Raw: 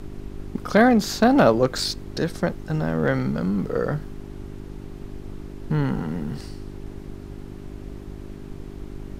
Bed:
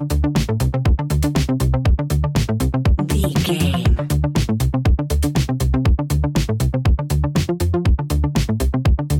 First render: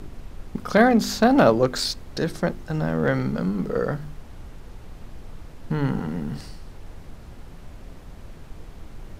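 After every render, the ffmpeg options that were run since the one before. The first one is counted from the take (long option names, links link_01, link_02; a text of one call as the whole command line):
ffmpeg -i in.wav -af "bandreject=frequency=50:width_type=h:width=4,bandreject=frequency=100:width_type=h:width=4,bandreject=frequency=150:width_type=h:width=4,bandreject=frequency=200:width_type=h:width=4,bandreject=frequency=250:width_type=h:width=4,bandreject=frequency=300:width_type=h:width=4,bandreject=frequency=350:width_type=h:width=4,bandreject=frequency=400:width_type=h:width=4" out.wav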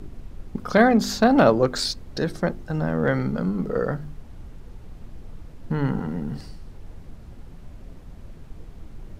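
ffmpeg -i in.wav -af "afftdn=noise_reduction=6:noise_floor=-43" out.wav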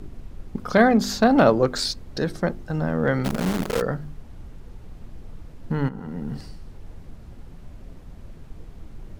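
ffmpeg -i in.wav -filter_complex "[0:a]asplit=3[link_01][link_02][link_03];[link_01]afade=type=out:start_time=3.24:duration=0.02[link_04];[link_02]acrusher=bits=5:dc=4:mix=0:aa=0.000001,afade=type=in:start_time=3.24:duration=0.02,afade=type=out:start_time=3.8:duration=0.02[link_05];[link_03]afade=type=in:start_time=3.8:duration=0.02[link_06];[link_04][link_05][link_06]amix=inputs=3:normalize=0,asplit=2[link_07][link_08];[link_07]atrim=end=5.89,asetpts=PTS-STARTPTS,afade=type=out:start_time=5.886:duration=0.004:curve=hsin:silence=0.211349[link_09];[link_08]atrim=start=5.89,asetpts=PTS-STARTPTS,afade=type=in:duration=0.43:silence=0.211349[link_10];[link_09][link_10]concat=n=2:v=0:a=1" out.wav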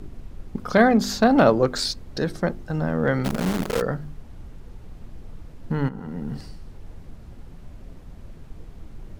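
ffmpeg -i in.wav -af anull out.wav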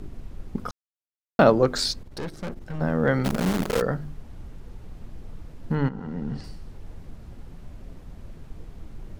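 ffmpeg -i in.wav -filter_complex "[0:a]asettb=1/sr,asplit=3[link_01][link_02][link_03];[link_01]atrim=end=2.034[link_04];[link_02]atrim=start=2.03:end=2.81,asetpts=PTS-STARTPTS,afade=type=in:duration=0.004:curve=qsin,afade=type=out:start_time=0.776:duration=0.004:curve=qsin,aeval=exprs='(tanh(28.2*val(0)+0.7)-tanh(0.7))/28.2':channel_layout=same[link_05];[link_03]atrim=start=2.806[link_06];[link_04][link_05]acrossfade=duration=0.004:curve1=hsin:curve2=qsin[link_07];[link_07][link_06]acrossfade=duration=0.004:curve1=qsin:curve2=hsin,asettb=1/sr,asplit=3[link_08][link_09][link_10];[link_08]atrim=end=5.754[link_11];[link_09]atrim=start=5.75:end=6.44,asetpts=PTS-STARTPTS,afade=type=in:duration=0.004:curve=qsin,afade=type=out:start_time=0.686:duration=0.004:curve=qsin,lowpass=6400[link_12];[link_10]atrim=start=6.436[link_13];[link_11][link_12]acrossfade=duration=0.004:curve1=hsin:curve2=qsin[link_14];[link_14][link_13]acrossfade=duration=0.004:curve1=qsin:curve2=hsin,asplit=3[link_15][link_16][link_17];[link_15]atrim=end=0.71,asetpts=PTS-STARTPTS,afade=type=out:start_time=0.706:duration=0.004:curve=hsin[link_18];[link_16]atrim=start=0.71:end=1.39,asetpts=PTS-STARTPTS,volume=0[link_19];[link_17]atrim=start=1.39,asetpts=PTS-STARTPTS,afade=type=in:duration=0.004:curve=hsin[link_20];[link_18][link_19][link_20]concat=n=3:v=0:a=1" out.wav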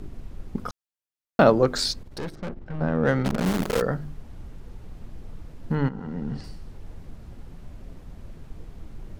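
ffmpeg -i in.wav -filter_complex "[0:a]asettb=1/sr,asplit=3[link_01][link_02][link_03];[link_01]atrim=end=2.354[link_04];[link_02]atrim=start=2.35:end=3.45,asetpts=PTS-STARTPTS,afade=type=in:duration=0.004:curve=qsin,afade=type=out:start_time=1.096:duration=0.004:curve=qsin,adynamicsmooth=sensitivity=3.5:basefreq=2800[link_05];[link_03]atrim=start=3.446[link_06];[link_04][link_05]acrossfade=duration=0.004:curve1=hsin:curve2=qsin[link_07];[link_07][link_06]acrossfade=duration=0.004:curve1=qsin:curve2=hsin" out.wav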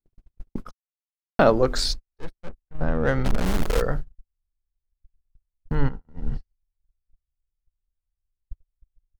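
ffmpeg -i in.wav -af "agate=range=-56dB:threshold=-29dB:ratio=16:detection=peak,asubboost=boost=9.5:cutoff=61" out.wav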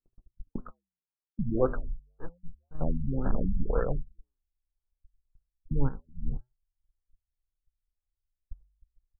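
ffmpeg -i in.wav -af "flanger=delay=3.7:depth=7.7:regen=-89:speed=0.3:shape=sinusoidal,afftfilt=real='re*lt(b*sr/1024,210*pow(1800/210,0.5+0.5*sin(2*PI*1.9*pts/sr)))':imag='im*lt(b*sr/1024,210*pow(1800/210,0.5+0.5*sin(2*PI*1.9*pts/sr)))':win_size=1024:overlap=0.75" out.wav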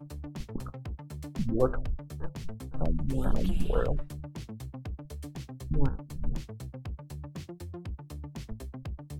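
ffmpeg -i in.wav -i bed.wav -filter_complex "[1:a]volume=-23dB[link_01];[0:a][link_01]amix=inputs=2:normalize=0" out.wav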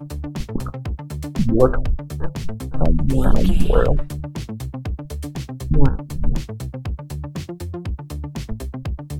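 ffmpeg -i in.wav -af "volume=12dB,alimiter=limit=-1dB:level=0:latency=1" out.wav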